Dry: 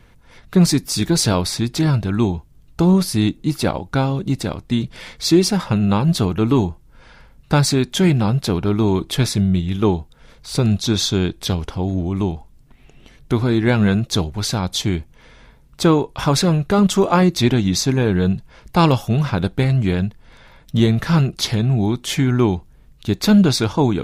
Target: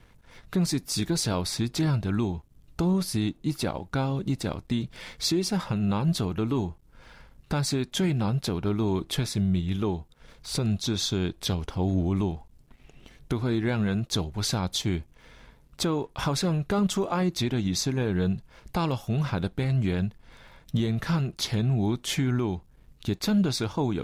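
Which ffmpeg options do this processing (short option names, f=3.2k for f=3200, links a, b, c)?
-af "alimiter=limit=-13dB:level=0:latency=1:release=447,aeval=exprs='sgn(val(0))*max(abs(val(0))-0.00119,0)':c=same,volume=-3.5dB"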